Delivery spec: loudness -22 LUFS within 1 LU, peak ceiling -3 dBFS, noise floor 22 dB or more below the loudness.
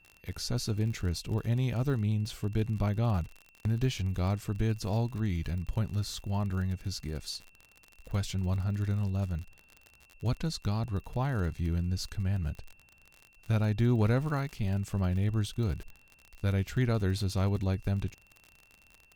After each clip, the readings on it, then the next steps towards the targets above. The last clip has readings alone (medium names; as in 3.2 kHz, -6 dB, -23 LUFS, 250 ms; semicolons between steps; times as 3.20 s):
tick rate 53 per s; steady tone 2.7 kHz; tone level -61 dBFS; loudness -32.0 LUFS; peak level -16.5 dBFS; loudness target -22.0 LUFS
-> de-click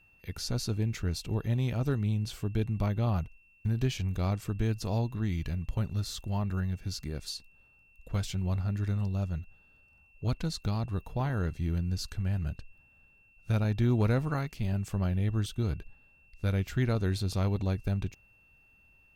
tick rate 0.52 per s; steady tone 2.7 kHz; tone level -61 dBFS
-> band-stop 2.7 kHz, Q 30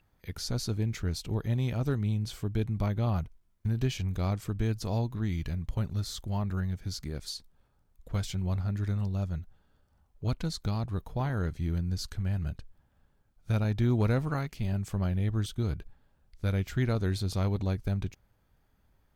steady tone not found; loudness -32.0 LUFS; peak level -16.5 dBFS; loudness target -22.0 LUFS
-> trim +10 dB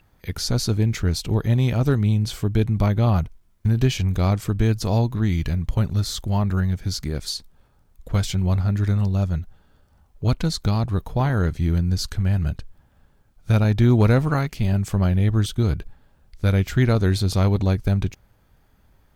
loudness -22.0 LUFS; peak level -6.5 dBFS; noise floor -59 dBFS